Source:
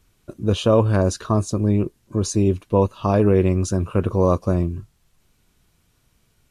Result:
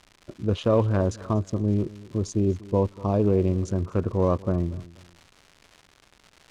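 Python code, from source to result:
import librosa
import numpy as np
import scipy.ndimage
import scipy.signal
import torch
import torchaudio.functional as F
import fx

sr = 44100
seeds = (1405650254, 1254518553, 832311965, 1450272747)

y = fx.wiener(x, sr, points=15)
y = fx.peak_eq(y, sr, hz=1700.0, db=-9.5, octaves=0.98, at=(1.33, 3.63))
y = fx.dmg_crackle(y, sr, seeds[0], per_s=230.0, level_db=-31.0)
y = fx.air_absorb(y, sr, metres=61.0)
y = fx.echo_feedback(y, sr, ms=241, feedback_pct=30, wet_db=-20.0)
y = y * 10.0 ** (-4.5 / 20.0)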